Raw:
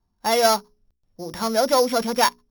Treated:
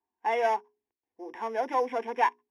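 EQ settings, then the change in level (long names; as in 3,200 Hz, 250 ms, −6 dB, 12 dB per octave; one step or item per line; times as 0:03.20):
band-pass filter 360–2,500 Hz
phaser with its sweep stopped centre 870 Hz, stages 8
−3.0 dB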